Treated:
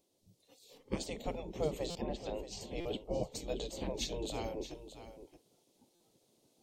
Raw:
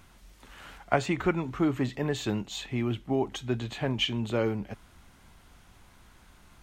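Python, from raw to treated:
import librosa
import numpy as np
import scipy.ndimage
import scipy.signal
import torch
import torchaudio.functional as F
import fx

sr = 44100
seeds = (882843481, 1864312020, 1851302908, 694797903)

y = fx.spec_gate(x, sr, threshold_db=-15, keep='weak')
y = fx.noise_reduce_blind(y, sr, reduce_db=14)
y = fx.env_lowpass_down(y, sr, base_hz=2600.0, full_db=-38.5, at=(1.92, 2.61))
y = fx.curve_eq(y, sr, hz=(520.0, 1500.0, 4200.0), db=(0, -29, -6))
y = fx.rider(y, sr, range_db=10, speed_s=2.0)
y = y + 10.0 ** (-12.5 / 20.0) * np.pad(y, (int(625 * sr / 1000.0), 0))[:len(y)]
y = fx.buffer_glitch(y, sr, at_s=(1.9, 2.8, 5.95), block=256, repeats=8)
y = F.gain(torch.from_numpy(y), 9.0).numpy()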